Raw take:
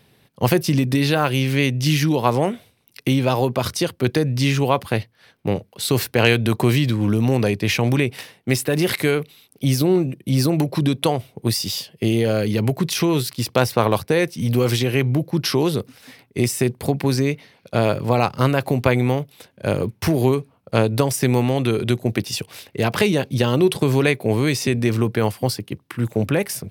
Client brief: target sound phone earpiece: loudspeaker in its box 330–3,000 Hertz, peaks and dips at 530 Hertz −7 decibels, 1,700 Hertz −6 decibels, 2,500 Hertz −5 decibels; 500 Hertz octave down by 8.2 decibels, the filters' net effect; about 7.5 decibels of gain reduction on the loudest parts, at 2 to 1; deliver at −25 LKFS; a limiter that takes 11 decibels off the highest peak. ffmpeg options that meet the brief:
ffmpeg -i in.wav -af "equalizer=frequency=500:width_type=o:gain=-6,acompressor=threshold=-27dB:ratio=2,alimiter=limit=-18.5dB:level=0:latency=1,highpass=330,equalizer=frequency=530:width_type=q:width=4:gain=-7,equalizer=frequency=1700:width_type=q:width=4:gain=-6,equalizer=frequency=2500:width_type=q:width=4:gain=-5,lowpass=frequency=3000:width=0.5412,lowpass=frequency=3000:width=1.3066,volume=12.5dB" out.wav

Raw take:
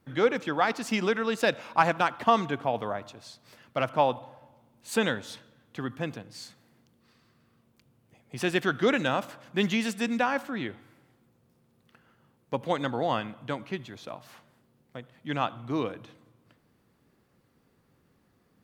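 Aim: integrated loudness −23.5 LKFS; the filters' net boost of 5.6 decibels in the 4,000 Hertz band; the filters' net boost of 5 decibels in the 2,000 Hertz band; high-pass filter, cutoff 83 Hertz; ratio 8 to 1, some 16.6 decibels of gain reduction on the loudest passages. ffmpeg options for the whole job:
ffmpeg -i in.wav -af "highpass=83,equalizer=frequency=2000:width_type=o:gain=5.5,equalizer=frequency=4000:width_type=o:gain=5,acompressor=threshold=-33dB:ratio=8,volume=15.5dB" out.wav

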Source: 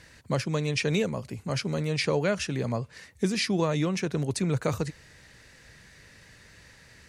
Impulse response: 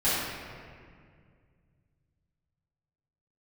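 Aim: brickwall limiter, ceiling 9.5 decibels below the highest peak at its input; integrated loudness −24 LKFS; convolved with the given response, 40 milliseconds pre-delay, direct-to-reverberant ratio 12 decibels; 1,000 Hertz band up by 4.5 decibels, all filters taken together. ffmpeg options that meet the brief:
-filter_complex "[0:a]equalizer=frequency=1000:width_type=o:gain=5.5,alimiter=limit=-20dB:level=0:latency=1,asplit=2[link_01][link_02];[1:a]atrim=start_sample=2205,adelay=40[link_03];[link_02][link_03]afir=irnorm=-1:irlink=0,volume=-25.5dB[link_04];[link_01][link_04]amix=inputs=2:normalize=0,volume=6.5dB"

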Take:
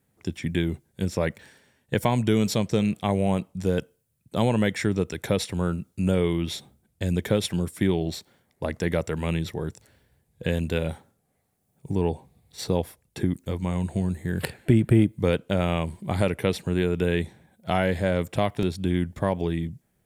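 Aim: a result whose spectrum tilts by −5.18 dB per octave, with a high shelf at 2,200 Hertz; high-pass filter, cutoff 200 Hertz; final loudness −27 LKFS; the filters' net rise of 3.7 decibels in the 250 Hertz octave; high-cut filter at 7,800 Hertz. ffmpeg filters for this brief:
ffmpeg -i in.wav -af "highpass=200,lowpass=7800,equalizer=frequency=250:width_type=o:gain=8,highshelf=frequency=2200:gain=6.5,volume=-3dB" out.wav

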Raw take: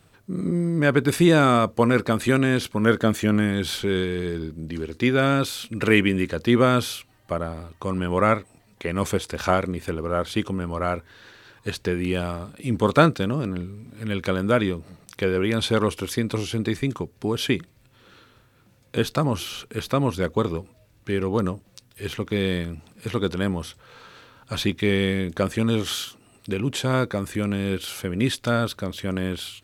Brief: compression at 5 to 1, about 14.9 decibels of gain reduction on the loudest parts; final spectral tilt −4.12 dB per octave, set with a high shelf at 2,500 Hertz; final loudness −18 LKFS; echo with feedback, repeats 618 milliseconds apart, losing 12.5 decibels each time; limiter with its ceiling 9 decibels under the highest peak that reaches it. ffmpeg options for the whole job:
ffmpeg -i in.wav -af "highshelf=frequency=2500:gain=8.5,acompressor=threshold=-27dB:ratio=5,alimiter=limit=-20dB:level=0:latency=1,aecho=1:1:618|1236|1854:0.237|0.0569|0.0137,volume=14.5dB" out.wav

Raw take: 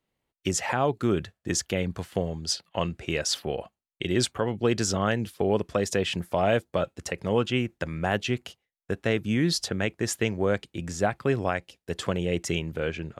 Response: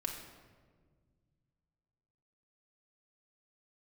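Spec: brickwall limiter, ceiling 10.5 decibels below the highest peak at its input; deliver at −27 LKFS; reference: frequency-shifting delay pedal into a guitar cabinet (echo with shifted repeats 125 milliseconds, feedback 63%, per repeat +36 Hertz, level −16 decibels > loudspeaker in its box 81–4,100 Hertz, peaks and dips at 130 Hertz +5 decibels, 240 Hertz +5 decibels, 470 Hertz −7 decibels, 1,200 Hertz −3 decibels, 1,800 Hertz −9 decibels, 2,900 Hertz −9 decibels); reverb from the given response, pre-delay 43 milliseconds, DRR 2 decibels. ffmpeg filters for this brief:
-filter_complex "[0:a]alimiter=limit=-21.5dB:level=0:latency=1,asplit=2[link_01][link_02];[1:a]atrim=start_sample=2205,adelay=43[link_03];[link_02][link_03]afir=irnorm=-1:irlink=0,volume=-3dB[link_04];[link_01][link_04]amix=inputs=2:normalize=0,asplit=7[link_05][link_06][link_07][link_08][link_09][link_10][link_11];[link_06]adelay=125,afreqshift=36,volume=-16dB[link_12];[link_07]adelay=250,afreqshift=72,volume=-20dB[link_13];[link_08]adelay=375,afreqshift=108,volume=-24dB[link_14];[link_09]adelay=500,afreqshift=144,volume=-28dB[link_15];[link_10]adelay=625,afreqshift=180,volume=-32.1dB[link_16];[link_11]adelay=750,afreqshift=216,volume=-36.1dB[link_17];[link_05][link_12][link_13][link_14][link_15][link_16][link_17]amix=inputs=7:normalize=0,highpass=81,equalizer=frequency=130:width_type=q:width=4:gain=5,equalizer=frequency=240:width_type=q:width=4:gain=5,equalizer=frequency=470:width_type=q:width=4:gain=-7,equalizer=frequency=1200:width_type=q:width=4:gain=-3,equalizer=frequency=1800:width_type=q:width=4:gain=-9,equalizer=frequency=2900:width_type=q:width=4:gain=-9,lowpass=frequency=4100:width=0.5412,lowpass=frequency=4100:width=1.3066,volume=5.5dB"

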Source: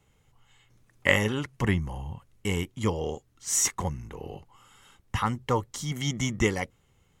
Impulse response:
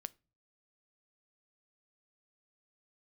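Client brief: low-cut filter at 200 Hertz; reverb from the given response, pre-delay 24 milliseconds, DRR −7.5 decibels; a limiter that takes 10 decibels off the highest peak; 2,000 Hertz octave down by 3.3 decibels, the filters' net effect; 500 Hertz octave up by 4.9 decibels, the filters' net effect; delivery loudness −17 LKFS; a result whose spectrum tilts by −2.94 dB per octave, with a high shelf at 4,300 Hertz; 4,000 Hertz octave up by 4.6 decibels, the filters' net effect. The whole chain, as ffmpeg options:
-filter_complex "[0:a]highpass=200,equalizer=frequency=500:width_type=o:gain=6,equalizer=frequency=2000:width_type=o:gain=-6.5,equalizer=frequency=4000:width_type=o:gain=6,highshelf=frequency=4300:gain=6,alimiter=limit=-15dB:level=0:latency=1,asplit=2[link_01][link_02];[1:a]atrim=start_sample=2205,adelay=24[link_03];[link_02][link_03]afir=irnorm=-1:irlink=0,volume=11.5dB[link_04];[link_01][link_04]amix=inputs=2:normalize=0,volume=4dB"

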